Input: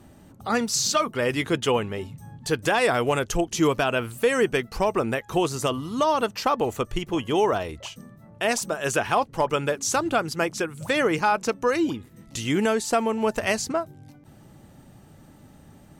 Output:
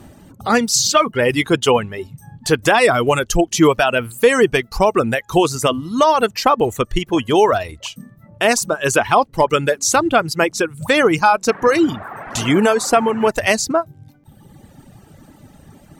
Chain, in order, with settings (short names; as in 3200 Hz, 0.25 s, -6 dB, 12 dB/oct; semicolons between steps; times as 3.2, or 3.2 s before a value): 11.48–13.3 band noise 110–1600 Hz -36 dBFS; reverb removal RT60 1.3 s; gain +9 dB